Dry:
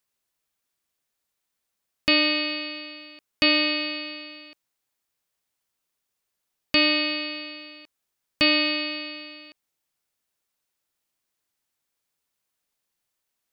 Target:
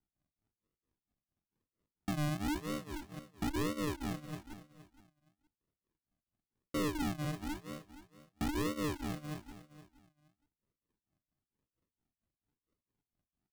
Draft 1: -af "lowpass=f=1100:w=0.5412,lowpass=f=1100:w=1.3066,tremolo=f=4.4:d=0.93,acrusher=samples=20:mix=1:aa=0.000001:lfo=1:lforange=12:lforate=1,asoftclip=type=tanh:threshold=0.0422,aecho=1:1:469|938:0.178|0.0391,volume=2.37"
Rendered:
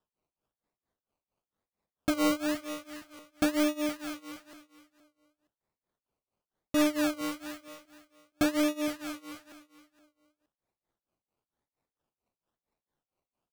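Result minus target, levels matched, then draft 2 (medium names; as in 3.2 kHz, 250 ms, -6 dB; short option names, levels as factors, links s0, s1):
decimation with a swept rate: distortion -30 dB; saturation: distortion -8 dB
-af "lowpass=f=1100:w=0.5412,lowpass=f=1100:w=1.3066,tremolo=f=4.4:d=0.93,acrusher=samples=76:mix=1:aa=0.000001:lfo=1:lforange=45.6:lforate=1,asoftclip=type=tanh:threshold=0.0112,aecho=1:1:469|938:0.178|0.0391,volume=2.37"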